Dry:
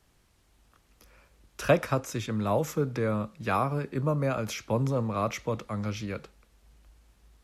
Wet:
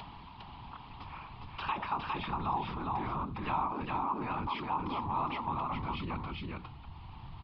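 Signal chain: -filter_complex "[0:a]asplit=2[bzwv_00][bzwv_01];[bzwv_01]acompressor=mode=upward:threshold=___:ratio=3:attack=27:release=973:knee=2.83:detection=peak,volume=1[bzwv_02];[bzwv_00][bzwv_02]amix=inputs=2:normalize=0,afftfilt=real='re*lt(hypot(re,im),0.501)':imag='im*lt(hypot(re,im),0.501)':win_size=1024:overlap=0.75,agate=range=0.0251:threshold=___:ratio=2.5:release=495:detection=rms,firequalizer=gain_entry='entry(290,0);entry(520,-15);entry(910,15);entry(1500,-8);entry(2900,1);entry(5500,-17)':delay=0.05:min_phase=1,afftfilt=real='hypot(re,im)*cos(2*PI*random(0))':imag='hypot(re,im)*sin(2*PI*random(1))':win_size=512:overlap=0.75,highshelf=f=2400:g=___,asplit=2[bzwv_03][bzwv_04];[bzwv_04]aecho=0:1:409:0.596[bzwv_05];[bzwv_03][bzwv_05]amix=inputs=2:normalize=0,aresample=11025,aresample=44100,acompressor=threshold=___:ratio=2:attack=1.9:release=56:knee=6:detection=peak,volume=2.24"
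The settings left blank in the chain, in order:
0.0112, 0.00631, 4, 0.00355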